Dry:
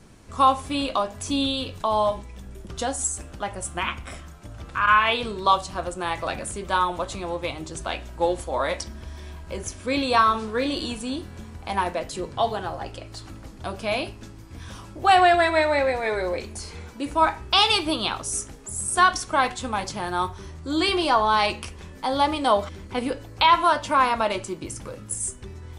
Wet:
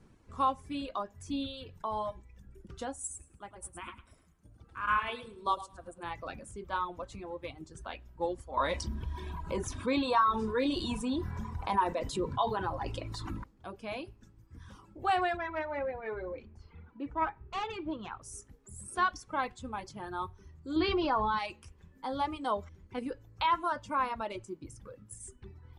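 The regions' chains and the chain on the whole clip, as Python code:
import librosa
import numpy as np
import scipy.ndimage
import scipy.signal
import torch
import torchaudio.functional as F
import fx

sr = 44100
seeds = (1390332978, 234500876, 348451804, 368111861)

y = fx.chain(x, sr, fx.peak_eq(hz=9500.0, db=12.0, octaves=0.49),
    fx.echo_feedback(ms=106, feedback_pct=31, wet_db=-4.5),
    fx.upward_expand(threshold_db=-28.0, expansion=1.5), at=(2.99, 6.03))
y = fx.chain(y, sr, fx.small_body(hz=(1000.0, 3700.0), ring_ms=25, db=10),
    fx.env_flatten(amount_pct=50), at=(8.57, 13.44))
y = fx.chain(y, sr, fx.self_delay(depth_ms=0.11),
    fx.lowpass(hz=2300.0, slope=12), at=(15.37, 18.22))
y = fx.chain(y, sr, fx.low_shelf(hz=340.0, db=5.0),
    fx.resample_bad(factor=4, down='none', up='filtered'),
    fx.env_flatten(amount_pct=70), at=(20.76, 21.39))
y = fx.peak_eq(y, sr, hz=650.0, db=-5.0, octaves=0.41)
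y = fx.dereverb_blind(y, sr, rt60_s=1.6)
y = fx.high_shelf(y, sr, hz=2400.0, db=-10.0)
y = y * librosa.db_to_amplitude(-8.5)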